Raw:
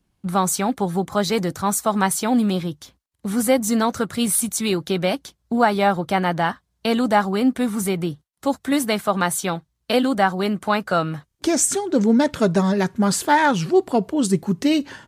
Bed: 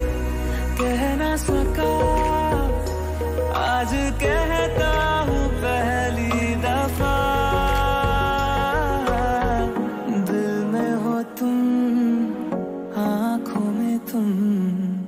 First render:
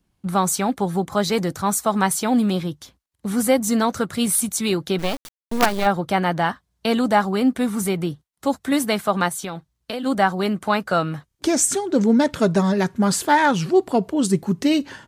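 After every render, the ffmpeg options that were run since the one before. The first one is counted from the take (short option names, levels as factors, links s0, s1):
-filter_complex "[0:a]asplit=3[s0][s1][s2];[s0]afade=t=out:st=4.98:d=0.02[s3];[s1]acrusher=bits=3:dc=4:mix=0:aa=0.000001,afade=t=in:st=4.98:d=0.02,afade=t=out:st=5.85:d=0.02[s4];[s2]afade=t=in:st=5.85:d=0.02[s5];[s3][s4][s5]amix=inputs=3:normalize=0,asplit=3[s6][s7][s8];[s6]afade=t=out:st=9.28:d=0.02[s9];[s7]acompressor=threshold=0.0501:ratio=4:attack=3.2:release=140:knee=1:detection=peak,afade=t=in:st=9.28:d=0.02,afade=t=out:st=10.05:d=0.02[s10];[s8]afade=t=in:st=10.05:d=0.02[s11];[s9][s10][s11]amix=inputs=3:normalize=0"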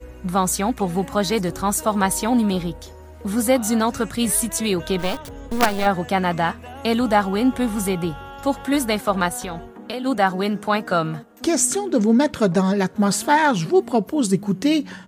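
-filter_complex "[1:a]volume=0.158[s0];[0:a][s0]amix=inputs=2:normalize=0"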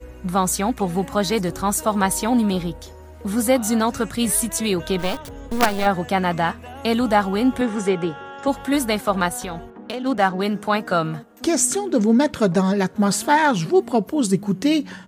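-filter_complex "[0:a]asettb=1/sr,asplit=3[s0][s1][s2];[s0]atrim=end=7.614[s3];[s1]atrim=start=7.61:end=8.48,asetpts=PTS-STARTPTS,afade=t=in:d=0.004:c=qsin,afade=t=out:st=0.866:d=0.004:c=qsin,highpass=170,equalizer=f=430:t=q:w=4:g=8,equalizer=f=1700:t=q:w=4:g=7,equalizer=f=4400:t=q:w=4:g=-6,lowpass=f=7400:w=0.5412,lowpass=f=7400:w=1.3066[s4];[s2]atrim=start=8.476[s5];[s3][s4]acrossfade=d=0.004:c1=hsin:c2=qsin[s6];[s6][s5]acrossfade=d=0.004:c1=qsin:c2=hsin,asettb=1/sr,asplit=3[s7][s8][s9];[s7]atrim=end=9.704[s10];[s8]atrim=start=9.7:end=10.41,asetpts=PTS-STARTPTS,afade=t=in:d=0.004:c=qsin,afade=t=out:st=0.706:d=0.004:c=qsin,adynamicsmooth=sensitivity=6.5:basefreq=2600[s11];[s9]atrim=start=10.406[s12];[s10][s11]acrossfade=d=0.004:c1=hsin:c2=qsin[s13];[s13][s12]acrossfade=d=0.004:c1=qsin:c2=hsin"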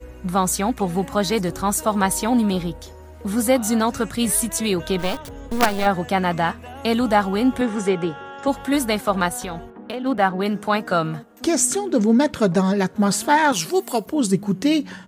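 -filter_complex "[0:a]asettb=1/sr,asplit=3[s0][s1][s2];[s0]atrim=end=9.724[s3];[s1]atrim=start=9.72:end=10.46,asetpts=PTS-STARTPTS,afade=t=in:d=0.004:c=qsin,afade=t=out:st=0.736:d=0.004:c=qsin,equalizer=f=6400:w=1.2:g=-10.5[s4];[s2]atrim=start=10.456[s5];[s3][s4]acrossfade=d=0.004:c1=hsin:c2=qsin[s6];[s6][s5]acrossfade=d=0.004:c1=qsin:c2=hsin,asettb=1/sr,asplit=3[s7][s8][s9];[s7]atrim=end=13.524[s10];[s8]atrim=start=13.52:end=14.06,asetpts=PTS-STARTPTS,afade=t=in:d=0.004:c=qsin,afade=t=out:st=0.536:d=0.004:c=qsin,aemphasis=mode=production:type=riaa[s11];[s9]atrim=start=14.056[s12];[s10][s11]acrossfade=d=0.004:c1=hsin:c2=qsin[s13];[s13][s12]acrossfade=d=0.004:c1=qsin:c2=hsin"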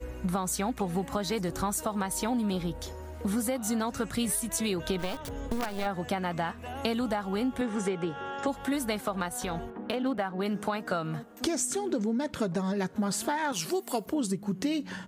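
-af "alimiter=limit=0.299:level=0:latency=1:release=484,acompressor=threshold=0.0447:ratio=6"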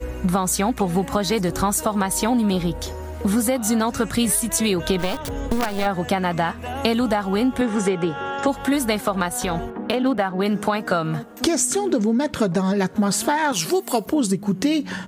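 -af "volume=2.99"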